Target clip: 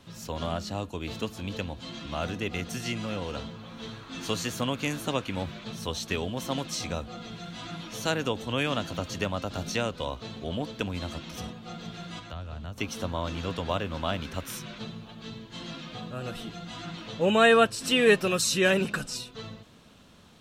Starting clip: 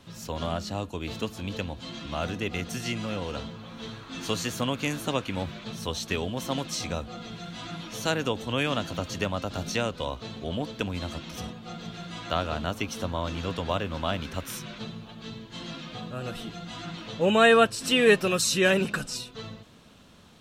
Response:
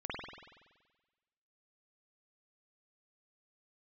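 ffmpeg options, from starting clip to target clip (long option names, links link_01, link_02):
-filter_complex "[0:a]asettb=1/sr,asplit=3[link_01][link_02][link_03];[link_01]atrim=end=12.194[link_04];[link_02]atrim=start=12.19:end=12.78,asetpts=PTS-STARTPTS,afade=type=in:duration=0.004:curve=qsin,afade=type=out:start_time=0.586:duration=0.004:curve=qsin,acrossover=split=130[link_05][link_06];[link_06]acompressor=threshold=-45dB:ratio=3[link_07];[link_05][link_07]amix=inputs=2:normalize=0[link_08];[link_03]atrim=start=12.776[link_09];[link_04][link_08]acrossfade=duration=0.004:curve1=hsin:curve2=qsin[link_10];[link_10][link_09]acrossfade=duration=0.004:curve1=qsin:curve2=hsin,volume=-1dB"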